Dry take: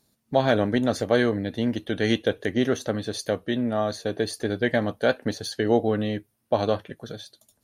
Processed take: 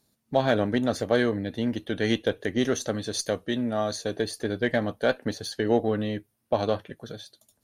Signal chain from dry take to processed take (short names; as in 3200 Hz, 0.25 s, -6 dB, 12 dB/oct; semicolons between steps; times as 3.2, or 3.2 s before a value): 2.57–4.22 dynamic EQ 6800 Hz, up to +8 dB, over -51 dBFS, Q 0.86; added harmonics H 8 -35 dB, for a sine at -6.5 dBFS; gain -2 dB